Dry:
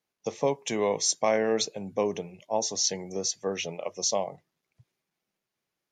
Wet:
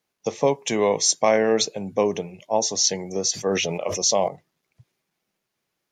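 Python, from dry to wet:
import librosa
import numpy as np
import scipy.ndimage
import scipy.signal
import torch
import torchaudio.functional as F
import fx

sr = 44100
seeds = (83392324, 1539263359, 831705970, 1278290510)

y = fx.sustainer(x, sr, db_per_s=28.0, at=(3.31, 4.28))
y = y * librosa.db_to_amplitude(6.0)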